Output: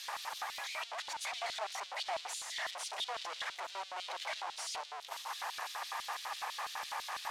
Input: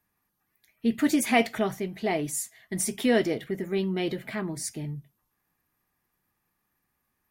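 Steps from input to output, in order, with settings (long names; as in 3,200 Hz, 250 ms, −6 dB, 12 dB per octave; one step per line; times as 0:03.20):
sign of each sample alone
low-pass filter 6,000 Hz 12 dB per octave
transient designer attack +1 dB, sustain +6 dB
four-pole ladder high-pass 470 Hz, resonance 40%
auto-filter high-pass square 6 Hz 880–3,600 Hz
level −1.5 dB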